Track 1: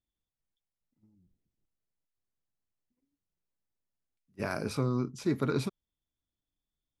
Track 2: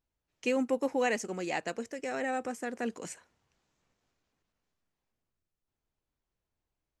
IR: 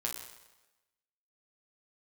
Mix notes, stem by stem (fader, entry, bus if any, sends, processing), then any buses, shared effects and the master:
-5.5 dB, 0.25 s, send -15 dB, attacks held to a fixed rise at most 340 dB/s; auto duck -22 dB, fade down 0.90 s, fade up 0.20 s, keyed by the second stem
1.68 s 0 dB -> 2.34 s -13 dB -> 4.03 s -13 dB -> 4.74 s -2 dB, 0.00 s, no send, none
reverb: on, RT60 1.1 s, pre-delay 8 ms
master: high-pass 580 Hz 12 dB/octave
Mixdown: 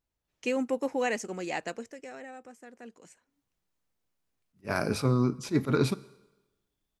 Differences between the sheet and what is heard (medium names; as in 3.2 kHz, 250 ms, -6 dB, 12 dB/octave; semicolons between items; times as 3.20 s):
stem 1 -5.5 dB -> +4.0 dB; master: missing high-pass 580 Hz 12 dB/octave